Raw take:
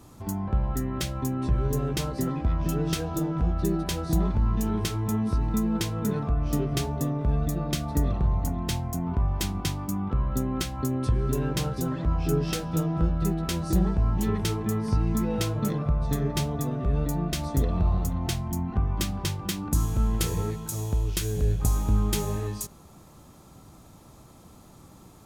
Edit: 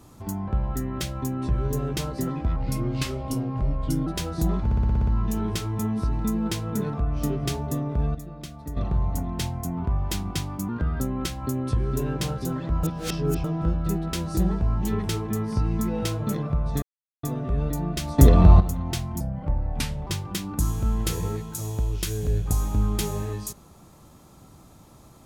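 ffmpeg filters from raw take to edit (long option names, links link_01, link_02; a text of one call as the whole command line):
ffmpeg -i in.wav -filter_complex "[0:a]asplit=22[link_01][link_02][link_03][link_04][link_05][link_06][link_07][link_08][link_09][link_10][link_11][link_12][link_13][link_14][link_15][link_16][link_17][link_18][link_19][link_20][link_21][link_22];[link_01]atrim=end=2.564[link_23];[link_02]atrim=start=2.56:end=3.78,asetpts=PTS-STARTPTS,asetrate=35721,aresample=44100,atrim=end_sample=66422,asetpts=PTS-STARTPTS[link_24];[link_03]atrim=start=3.776:end=4.422[link_25];[link_04]atrim=start=4.358:end=4.422[link_26];[link_05]atrim=start=4.358:end=4.422[link_27];[link_06]atrim=start=4.358:end=4.422[link_28];[link_07]atrim=start=4.358:end=4.422[link_29];[link_08]atrim=start=4.358:end=4.422[link_30];[link_09]atrim=start=4.358:end=4.422[link_31];[link_10]atrim=start=4.358:end=7.442[link_32];[link_11]atrim=start=7.438:end=8.062,asetpts=PTS-STARTPTS,volume=-10.5dB[link_33];[link_12]atrim=start=8.058:end=9.984[link_34];[link_13]atrim=start=9.98:end=10.36,asetpts=PTS-STARTPTS,asetrate=52920,aresample=44100[link_35];[link_14]atrim=start=10.356:end=12.192[link_36];[link_15]atrim=start=12.188:end=12.802,asetpts=PTS-STARTPTS,areverse[link_37];[link_16]atrim=start=12.798:end=16.18,asetpts=PTS-STARTPTS,afade=type=out:start_time=3.378:duration=0.004:curve=hsin[link_38];[link_17]atrim=start=16.18:end=16.59,asetpts=PTS-STARTPTS,volume=0[link_39];[link_18]atrim=start=16.59:end=17.542,asetpts=PTS-STARTPTS,afade=type=in:duration=0.004:curve=hsin[link_40];[link_19]atrim=start=17.538:end=17.962,asetpts=PTS-STARTPTS,volume=11dB[link_41];[link_20]atrim=start=17.958:end=18.564[link_42];[link_21]atrim=start=18.56:end=19.21,asetpts=PTS-STARTPTS,asetrate=33075,aresample=44100[link_43];[link_22]atrim=start=19.206[link_44];[link_23][link_24]acrossfade=duration=0.004:curve1=hsin:curve2=hsin[link_45];[link_45][link_25]acrossfade=duration=0.004:curve1=hsin:curve2=hsin[link_46];[link_46][link_26]acrossfade=duration=0.004:curve1=hsin:curve2=hsin[link_47];[link_47][link_27]acrossfade=duration=0.004:curve1=hsin:curve2=hsin[link_48];[link_48][link_28]acrossfade=duration=0.004:curve1=hsin:curve2=hsin[link_49];[link_49][link_29]acrossfade=duration=0.004:curve1=hsin:curve2=hsin[link_50];[link_50][link_30]acrossfade=duration=0.004:curve1=hsin:curve2=hsin[link_51];[link_51][link_31]acrossfade=duration=0.004:curve1=hsin:curve2=hsin[link_52];[link_52][link_32]acrossfade=duration=0.004:curve1=hsin:curve2=hsin[link_53];[link_53][link_33]acrossfade=duration=0.004:curve1=hsin:curve2=hsin[link_54];[link_54][link_34]acrossfade=duration=0.004:curve1=hsin:curve2=hsin[link_55];[link_55][link_35]acrossfade=duration=0.004:curve1=hsin:curve2=hsin[link_56];[link_56][link_36]acrossfade=duration=0.004:curve1=hsin:curve2=hsin[link_57];[link_57][link_37]acrossfade=duration=0.004:curve1=hsin:curve2=hsin[link_58];[link_38][link_39][link_40]concat=n=3:v=0:a=1[link_59];[link_58][link_59]acrossfade=duration=0.004:curve1=hsin:curve2=hsin[link_60];[link_60][link_41]acrossfade=duration=0.004:curve1=hsin:curve2=hsin[link_61];[link_61][link_42]acrossfade=duration=0.004:curve1=hsin:curve2=hsin[link_62];[link_62][link_43]acrossfade=duration=0.004:curve1=hsin:curve2=hsin[link_63];[link_63][link_44]acrossfade=duration=0.004:curve1=hsin:curve2=hsin" out.wav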